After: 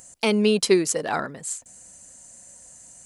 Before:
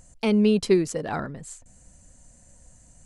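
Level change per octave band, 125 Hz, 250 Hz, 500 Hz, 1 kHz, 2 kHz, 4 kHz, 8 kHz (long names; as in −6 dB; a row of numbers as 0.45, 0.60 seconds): −3.0, −1.5, +2.0, +4.5, +6.0, +7.5, +11.0 decibels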